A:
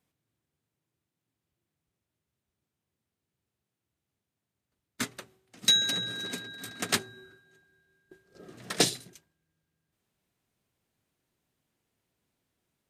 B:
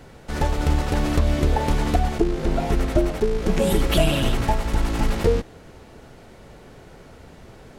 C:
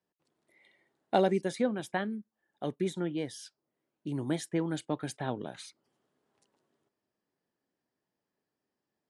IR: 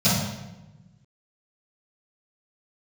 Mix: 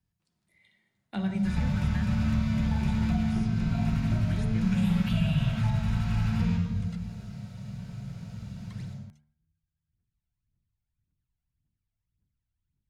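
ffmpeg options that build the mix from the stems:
-filter_complex "[0:a]aemphasis=mode=reproduction:type=riaa,acompressor=threshold=-34dB:ratio=6,aphaser=in_gain=1:out_gain=1:delay=1.5:decay=0.72:speed=1.8:type=triangular,volume=-13.5dB[link_01];[1:a]adelay=1150,volume=-9dB,asplit=2[link_02][link_03];[link_03]volume=-10dB[link_04];[2:a]volume=0.5dB,asplit=2[link_05][link_06];[link_06]volume=-22dB[link_07];[3:a]atrim=start_sample=2205[link_08];[link_04][link_07]amix=inputs=2:normalize=0[link_09];[link_09][link_08]afir=irnorm=-1:irlink=0[link_10];[link_01][link_02][link_05][link_10]amix=inputs=4:normalize=0,equalizer=frequency=510:width_type=o:width=2:gain=-13,bandreject=frequency=74.73:width_type=h:width=4,bandreject=frequency=149.46:width_type=h:width=4,bandreject=frequency=224.19:width_type=h:width=4,bandreject=frequency=298.92:width_type=h:width=4,bandreject=frequency=373.65:width_type=h:width=4,bandreject=frequency=448.38:width_type=h:width=4,bandreject=frequency=523.11:width_type=h:width=4,bandreject=frequency=597.84:width_type=h:width=4,bandreject=frequency=672.57:width_type=h:width=4,bandreject=frequency=747.3:width_type=h:width=4,bandreject=frequency=822.03:width_type=h:width=4,bandreject=frequency=896.76:width_type=h:width=4,bandreject=frequency=971.49:width_type=h:width=4,bandreject=frequency=1046.22:width_type=h:width=4,bandreject=frequency=1120.95:width_type=h:width=4,bandreject=frequency=1195.68:width_type=h:width=4,bandreject=frequency=1270.41:width_type=h:width=4,bandreject=frequency=1345.14:width_type=h:width=4,bandreject=frequency=1419.87:width_type=h:width=4,bandreject=frequency=1494.6:width_type=h:width=4,bandreject=frequency=1569.33:width_type=h:width=4,bandreject=frequency=1644.06:width_type=h:width=4,bandreject=frequency=1718.79:width_type=h:width=4,bandreject=frequency=1793.52:width_type=h:width=4,bandreject=frequency=1868.25:width_type=h:width=4,bandreject=frequency=1942.98:width_type=h:width=4,bandreject=frequency=2017.71:width_type=h:width=4,bandreject=frequency=2092.44:width_type=h:width=4,bandreject=frequency=2167.17:width_type=h:width=4,bandreject=frequency=2241.9:width_type=h:width=4,bandreject=frequency=2316.63:width_type=h:width=4,acrossover=split=350|790|2900[link_11][link_12][link_13][link_14];[link_11]acompressor=threshold=-24dB:ratio=4[link_15];[link_12]acompressor=threshold=-57dB:ratio=4[link_16];[link_13]acompressor=threshold=-39dB:ratio=4[link_17];[link_14]acompressor=threshold=-56dB:ratio=4[link_18];[link_15][link_16][link_17][link_18]amix=inputs=4:normalize=0"

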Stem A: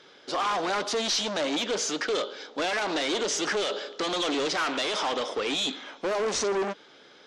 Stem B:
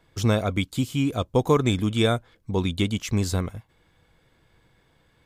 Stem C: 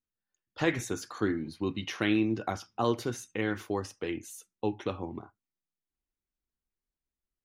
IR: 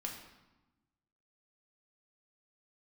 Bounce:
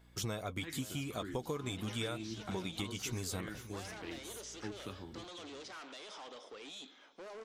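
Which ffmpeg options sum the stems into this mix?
-filter_complex "[0:a]alimiter=level_in=2.5dB:limit=-24dB:level=0:latency=1:release=427,volume=-2.5dB,adelay=1150,volume=-17dB[link_01];[1:a]lowshelf=frequency=390:gain=-6,flanger=delay=4.6:depth=3.3:regen=-48:speed=0.81:shape=triangular,aeval=exprs='val(0)+0.001*(sin(2*PI*60*n/s)+sin(2*PI*2*60*n/s)/2+sin(2*PI*3*60*n/s)/3+sin(2*PI*4*60*n/s)/4+sin(2*PI*5*60*n/s)/5)':channel_layout=same,volume=-1dB,asplit=2[link_02][link_03];[link_03]volume=-20dB[link_04];[2:a]dynaudnorm=framelen=580:gausssize=3:maxgain=5.5dB,equalizer=frequency=590:width_type=o:width=0.95:gain=-13,volume=-14dB,asplit=2[link_05][link_06];[link_06]volume=-14.5dB[link_07];[link_04][link_07]amix=inputs=2:normalize=0,aecho=0:1:521:1[link_08];[link_01][link_02][link_05][link_08]amix=inputs=4:normalize=0,highshelf=frequency=7700:gain=7.5,acompressor=threshold=-36dB:ratio=5"

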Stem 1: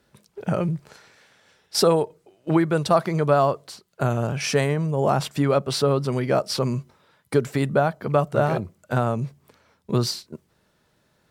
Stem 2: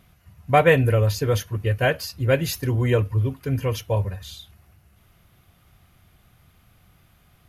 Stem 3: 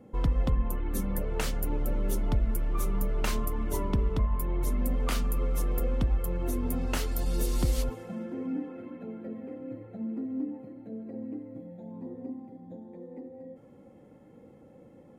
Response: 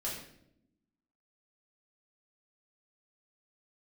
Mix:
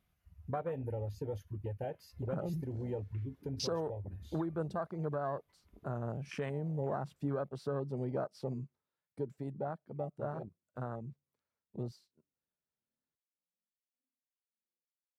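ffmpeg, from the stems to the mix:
-filter_complex "[0:a]adelay=1850,volume=-10.5dB,afade=type=out:start_time=8.37:duration=0.48:silence=0.421697[link_01];[1:a]acompressor=threshold=-28dB:ratio=1.5,volume=-4.5dB,asplit=2[link_02][link_03];[2:a]highpass=frequency=100:width=0.5412,highpass=frequency=100:width=1.3066,acrossover=split=1000[link_04][link_05];[link_04]aeval=exprs='val(0)*(1-1/2+1/2*cos(2*PI*1.7*n/s))':channel_layout=same[link_06];[link_05]aeval=exprs='val(0)*(1-1/2-1/2*cos(2*PI*1.7*n/s))':channel_layout=same[link_07];[link_06][link_07]amix=inputs=2:normalize=0,lowpass=frequency=2200:width_type=q:width=3.5,adelay=1750,volume=-12.5dB[link_08];[link_03]apad=whole_len=746769[link_09];[link_08][link_09]sidechaingate=range=-33dB:threshold=-58dB:ratio=16:detection=peak[link_10];[link_02][link_10]amix=inputs=2:normalize=0,equalizer=frequency=120:width=3.6:gain=-5,acompressor=threshold=-41dB:ratio=2,volume=0dB[link_11];[link_01][link_11]amix=inputs=2:normalize=0,afwtdn=0.0141,alimiter=level_in=1.5dB:limit=-24dB:level=0:latency=1:release=418,volume=-1.5dB"

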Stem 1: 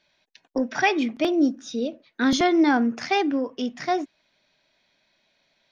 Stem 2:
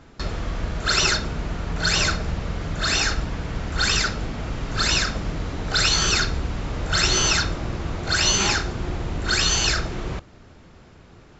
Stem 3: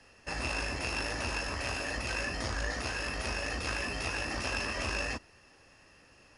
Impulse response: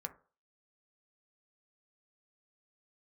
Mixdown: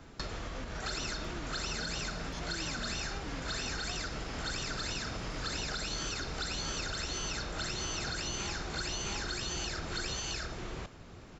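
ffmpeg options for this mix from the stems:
-filter_complex "[0:a]alimiter=limit=-19dB:level=0:latency=1,volume=-14dB,asplit=2[link_01][link_02];[1:a]acompressor=threshold=-22dB:ratio=6,volume=-4dB,asplit=2[link_03][link_04];[link_04]volume=-4.5dB[link_05];[2:a]bandpass=frequency=4900:width_type=q:width=4.7:csg=0,acompressor=threshold=-52dB:ratio=6,adelay=1300,volume=-2dB[link_06];[link_02]apad=whole_len=338638[link_07];[link_06][link_07]sidechaincompress=threshold=-40dB:ratio=8:attack=16:release=1160[link_08];[link_01][link_03]amix=inputs=2:normalize=0,acompressor=threshold=-32dB:ratio=3,volume=0dB[link_09];[link_05]aecho=0:1:666:1[link_10];[link_08][link_09][link_10]amix=inputs=3:normalize=0,highshelf=frequency=6100:gain=5.5,acrossover=split=260|920|4000[link_11][link_12][link_13][link_14];[link_11]acompressor=threshold=-40dB:ratio=4[link_15];[link_12]acompressor=threshold=-44dB:ratio=4[link_16];[link_13]acompressor=threshold=-40dB:ratio=4[link_17];[link_14]acompressor=threshold=-42dB:ratio=4[link_18];[link_15][link_16][link_17][link_18]amix=inputs=4:normalize=0"

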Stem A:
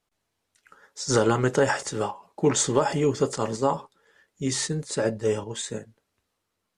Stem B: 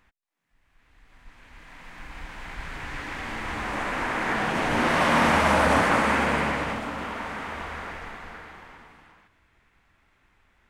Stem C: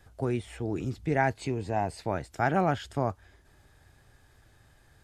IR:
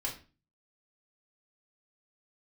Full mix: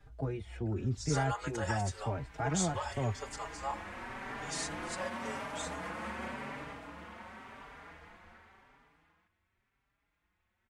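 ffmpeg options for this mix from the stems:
-filter_complex "[0:a]highpass=frequency=630:width=0.5412,highpass=frequency=630:width=1.3066,volume=-8dB[link_01];[1:a]highpass=frequency=84:poles=1,alimiter=limit=-15.5dB:level=0:latency=1:release=132,volume=-13dB[link_02];[2:a]acrossover=split=140[link_03][link_04];[link_04]acompressor=threshold=-33dB:ratio=2[link_05];[link_03][link_05]amix=inputs=2:normalize=0,aemphasis=mode=reproduction:type=50fm,volume=-1dB[link_06];[link_01][link_02][link_06]amix=inputs=3:normalize=0,lowshelf=frequency=98:gain=9,asplit=2[link_07][link_08];[link_08]adelay=4.6,afreqshift=0.91[link_09];[link_07][link_09]amix=inputs=2:normalize=1"

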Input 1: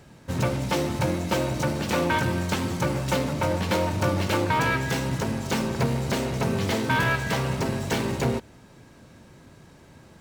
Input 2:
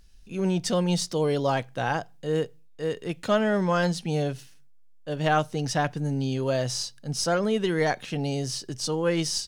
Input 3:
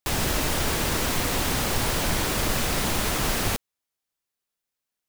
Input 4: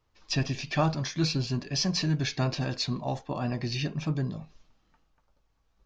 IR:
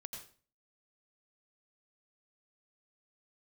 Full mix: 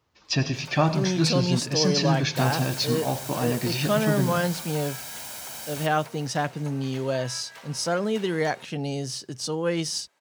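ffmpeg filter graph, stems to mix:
-filter_complex "[0:a]highpass=750,acompressor=threshold=-30dB:ratio=6,adelay=250,volume=-12dB[link_01];[1:a]adelay=600,volume=-1dB[link_02];[2:a]bass=frequency=250:gain=-9,treble=frequency=4000:gain=9,aecho=1:1:1.3:0.74,adelay=2300,volume=-18dB,asplit=2[link_03][link_04];[link_04]volume=-14.5dB[link_05];[3:a]volume=2dB,asplit=2[link_06][link_07];[link_07]volume=-4.5dB[link_08];[4:a]atrim=start_sample=2205[link_09];[link_08][link_09]afir=irnorm=-1:irlink=0[link_10];[link_05]aecho=0:1:202|404|606|808|1010|1212|1414|1616|1818:1|0.59|0.348|0.205|0.121|0.0715|0.0422|0.0249|0.0147[link_11];[link_01][link_02][link_03][link_06][link_10][link_11]amix=inputs=6:normalize=0,highpass=90"

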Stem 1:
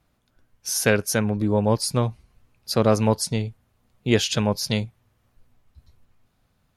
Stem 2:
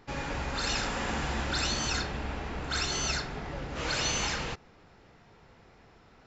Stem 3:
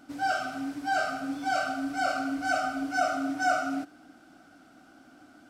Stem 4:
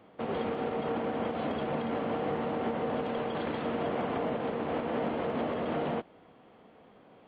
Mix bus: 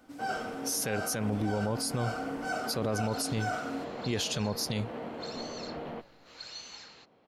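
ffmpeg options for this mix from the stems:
ffmpeg -i stem1.wav -i stem2.wav -i stem3.wav -i stem4.wav -filter_complex "[0:a]volume=-5dB[link_01];[1:a]highpass=frequency=360:poles=1,equalizer=frequency=4200:width_type=o:width=0.24:gain=13,adelay=2500,volume=-19.5dB[link_02];[2:a]volume=-7dB[link_03];[3:a]volume=-8dB[link_04];[link_01][link_02][link_03][link_04]amix=inputs=4:normalize=0,highshelf=frequency=8700:gain=4,alimiter=limit=-22dB:level=0:latency=1:release=39" out.wav

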